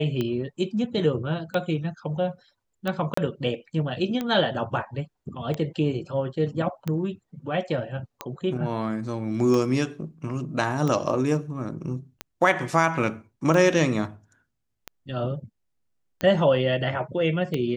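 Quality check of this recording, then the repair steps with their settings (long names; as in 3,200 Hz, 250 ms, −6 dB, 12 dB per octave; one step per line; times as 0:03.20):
scratch tick 45 rpm −15 dBFS
0:03.14–0:03.17: drop-out 34 ms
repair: click removal
repair the gap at 0:03.14, 34 ms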